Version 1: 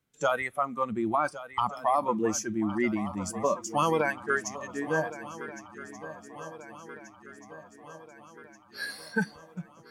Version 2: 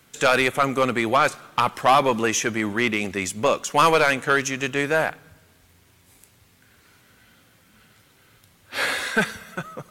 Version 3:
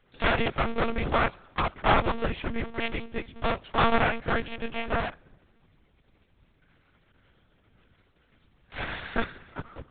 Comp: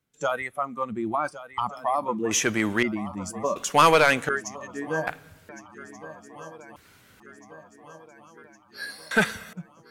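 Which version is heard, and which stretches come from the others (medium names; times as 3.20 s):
1
2.31–2.83 s: from 2
3.56–4.29 s: from 2
5.07–5.49 s: from 2
6.76–7.20 s: from 2
9.11–9.53 s: from 2
not used: 3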